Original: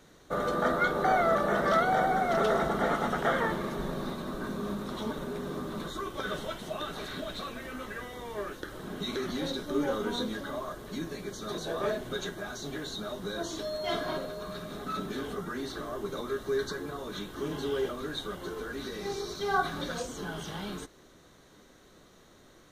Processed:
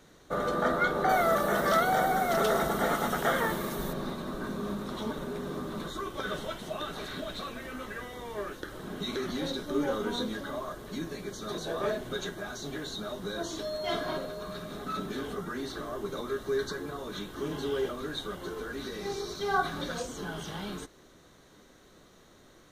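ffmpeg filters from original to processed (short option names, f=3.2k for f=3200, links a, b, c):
-filter_complex "[0:a]asettb=1/sr,asplit=3[a][b][c];[a]atrim=end=1.094[d];[b]atrim=start=1.09:end=3.93,asetpts=PTS-STARTPTS,afade=t=in:d=0.004:c=qsin,afade=t=out:st=2.836:d=0.004:c=qsin,aemphasis=mode=production:type=50fm[e];[c]atrim=start=3.926[f];[d][e]acrossfade=d=0.004:c1=hsin:c2=qsin[g];[g][f]acrossfade=d=0.004:c1=qsin:c2=hsin"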